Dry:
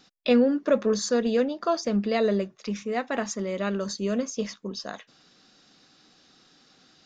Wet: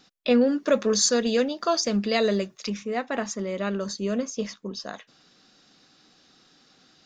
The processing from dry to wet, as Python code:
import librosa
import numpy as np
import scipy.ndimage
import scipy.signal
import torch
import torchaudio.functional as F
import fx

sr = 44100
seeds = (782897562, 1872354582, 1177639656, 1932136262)

y = fx.high_shelf(x, sr, hz=2700.0, db=12.0, at=(0.41, 2.7))